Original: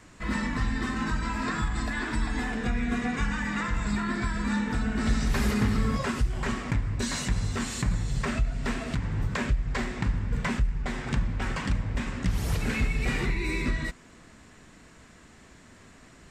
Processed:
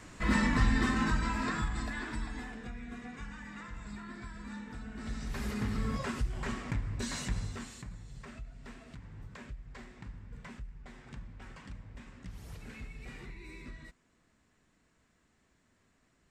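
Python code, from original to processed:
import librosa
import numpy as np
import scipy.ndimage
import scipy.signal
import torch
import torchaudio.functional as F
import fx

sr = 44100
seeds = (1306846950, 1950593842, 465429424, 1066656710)

y = fx.gain(x, sr, db=fx.line((0.78, 1.5), (2.17, -9.0), (2.77, -16.0), (4.87, -16.0), (5.91, -7.0), (7.37, -7.0), (7.9, -19.0)))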